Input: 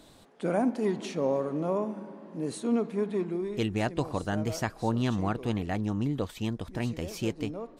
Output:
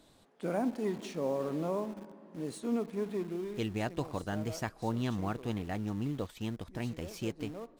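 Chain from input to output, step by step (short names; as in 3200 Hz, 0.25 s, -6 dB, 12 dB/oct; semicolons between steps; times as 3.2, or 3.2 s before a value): in parallel at -11.5 dB: requantised 6-bit, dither none; 1.4–1.8 on the sum: fast leveller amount 50%; gain -7.5 dB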